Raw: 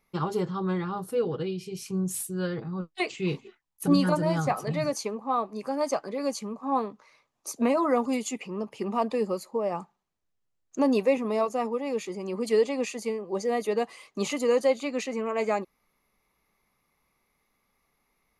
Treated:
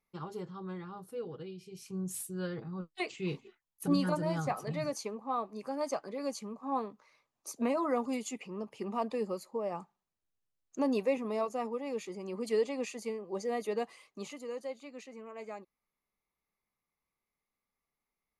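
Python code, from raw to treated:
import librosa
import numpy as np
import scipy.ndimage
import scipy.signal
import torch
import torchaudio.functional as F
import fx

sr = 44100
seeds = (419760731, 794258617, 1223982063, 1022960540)

y = fx.gain(x, sr, db=fx.line((1.61, -13.0), (2.15, -7.0), (13.89, -7.0), (14.42, -17.0)))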